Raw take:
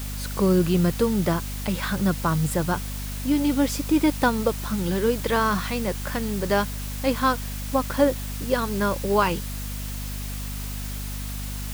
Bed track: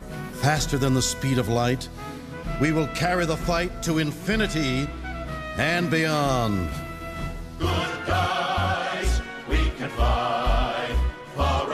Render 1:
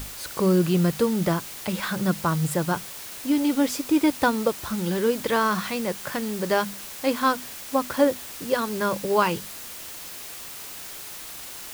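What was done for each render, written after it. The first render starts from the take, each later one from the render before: hum notches 50/100/150/200/250 Hz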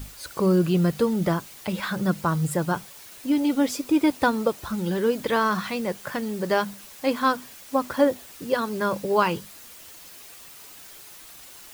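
noise reduction 8 dB, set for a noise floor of -39 dBFS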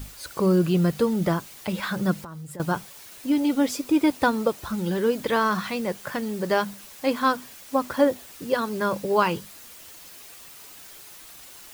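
2.19–2.60 s: compression 20:1, threshold -35 dBFS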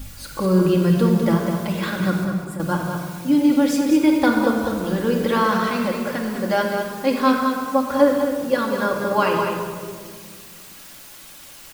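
delay 202 ms -7 dB; simulated room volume 3200 m³, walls mixed, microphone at 2.3 m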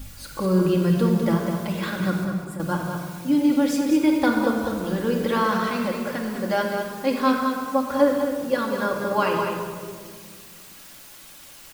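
trim -3 dB

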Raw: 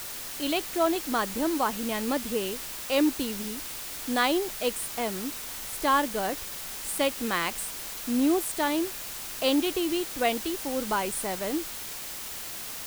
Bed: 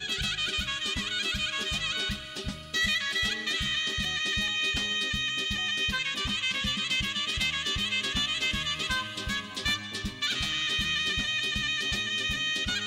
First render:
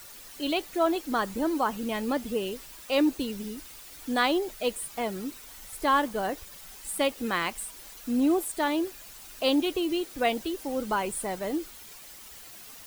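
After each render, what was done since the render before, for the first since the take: noise reduction 11 dB, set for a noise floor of -38 dBFS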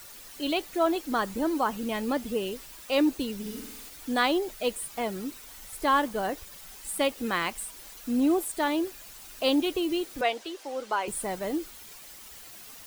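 3.41–3.89 s: flutter echo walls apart 8.3 m, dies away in 0.74 s; 10.21–11.08 s: three-band isolator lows -22 dB, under 370 Hz, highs -13 dB, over 7.7 kHz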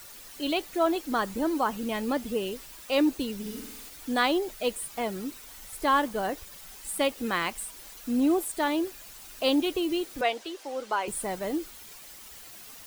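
no audible change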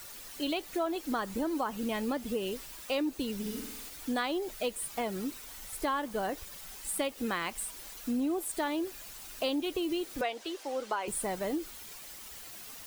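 compression 5:1, threshold -29 dBFS, peak gain reduction 10 dB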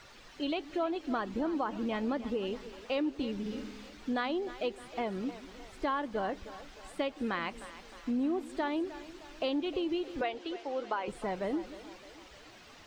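distance through air 170 m; two-band feedback delay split 330 Hz, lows 173 ms, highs 308 ms, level -14.5 dB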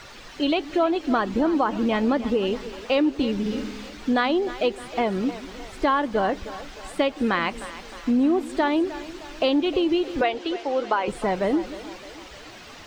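trim +11 dB

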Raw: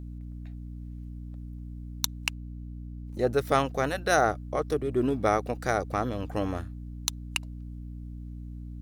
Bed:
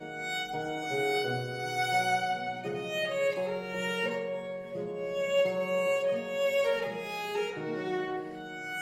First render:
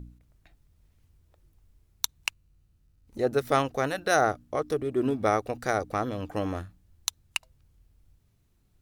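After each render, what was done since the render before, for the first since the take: de-hum 60 Hz, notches 5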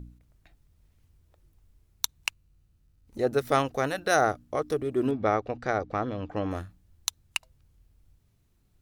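5.11–6.51 s: distance through air 160 m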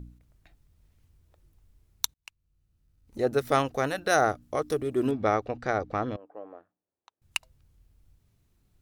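2.14–3.20 s: fade in; 4.42–5.47 s: peaking EQ 14 kHz +5 dB 2.1 oct; 6.16–7.22 s: ladder band-pass 640 Hz, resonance 25%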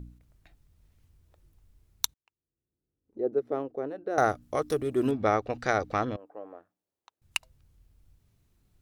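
2.14–4.18 s: band-pass filter 380 Hz, Q 2.2; 5.50–6.05 s: treble shelf 2 kHz +8.5 dB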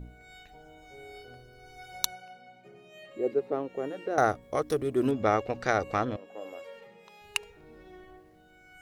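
add bed -18 dB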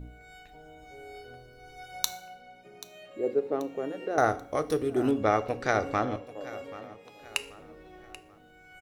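feedback delay 784 ms, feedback 40%, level -17 dB; FDN reverb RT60 0.54 s, low-frequency decay 0.9×, high-frequency decay 0.95×, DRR 11 dB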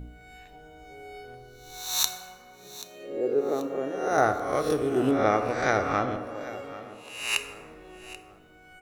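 reverse spectral sustain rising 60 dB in 0.69 s; plate-style reverb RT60 2 s, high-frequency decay 0.4×, DRR 8.5 dB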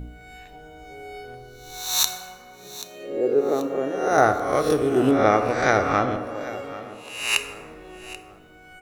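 trim +5 dB; peak limiter -3 dBFS, peak gain reduction 2.5 dB

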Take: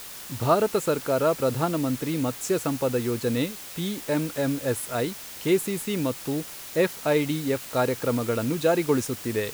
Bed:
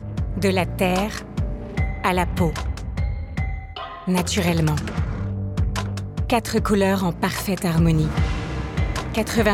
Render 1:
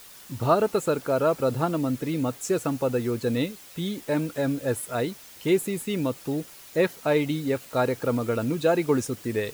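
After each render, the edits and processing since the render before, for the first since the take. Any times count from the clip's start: noise reduction 8 dB, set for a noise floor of -40 dBFS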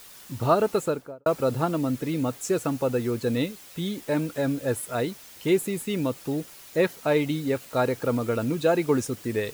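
0.77–1.26 s: studio fade out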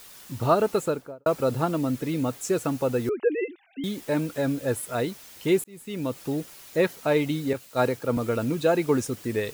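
3.09–3.84 s: formants replaced by sine waves; 5.64–6.20 s: fade in; 7.53–8.17 s: three bands expanded up and down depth 100%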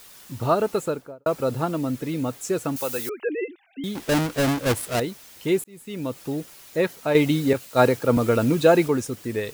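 2.76–3.29 s: tilt EQ +4 dB/octave; 3.95–5.00 s: square wave that keeps the level; 7.15–8.88 s: gain +6 dB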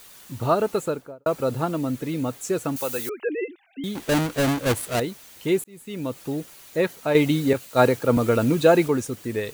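band-stop 5.2 kHz, Q 17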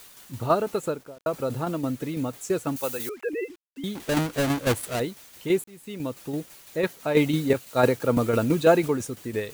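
tremolo saw down 6 Hz, depth 50%; bit crusher 9-bit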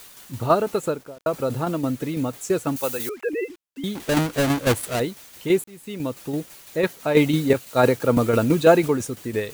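trim +3.5 dB; peak limiter -3 dBFS, peak gain reduction 2 dB

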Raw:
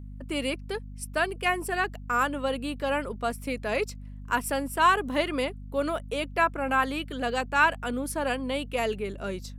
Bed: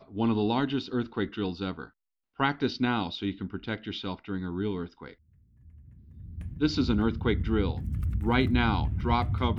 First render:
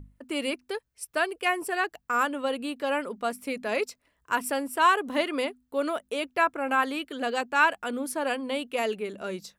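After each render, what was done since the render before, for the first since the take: hum notches 50/100/150/200/250 Hz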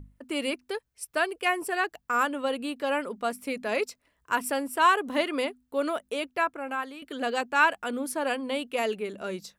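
6.08–7.02 s: fade out, to -13 dB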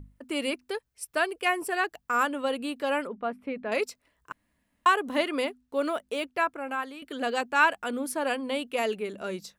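3.07–3.72 s: distance through air 500 m; 4.32–4.86 s: room tone; 5.44–6.39 s: median filter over 3 samples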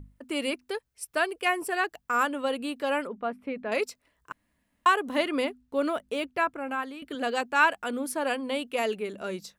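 5.25–7.15 s: tone controls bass +7 dB, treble -2 dB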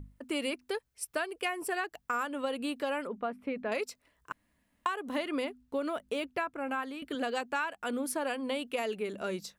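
compression 12:1, threshold -29 dBFS, peak gain reduction 14 dB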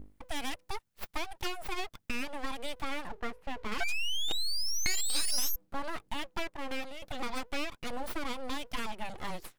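3.80–5.56 s: painted sound rise 1.1–6.5 kHz -28 dBFS; full-wave rectifier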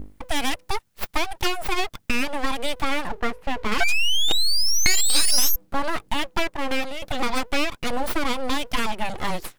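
trim +12 dB

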